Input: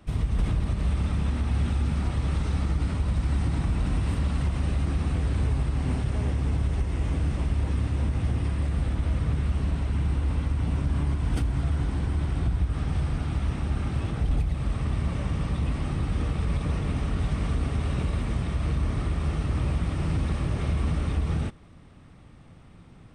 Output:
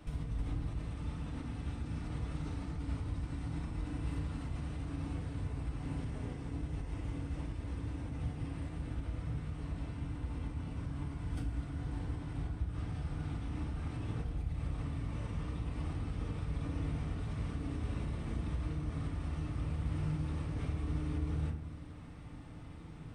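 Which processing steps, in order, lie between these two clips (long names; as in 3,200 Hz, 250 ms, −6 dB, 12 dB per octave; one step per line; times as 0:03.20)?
downward compressor 6 to 1, threshold −36 dBFS, peak gain reduction 15 dB
feedback delay network reverb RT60 0.83 s, low-frequency decay 1.35×, high-frequency decay 0.55×, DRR 0.5 dB
level −2.5 dB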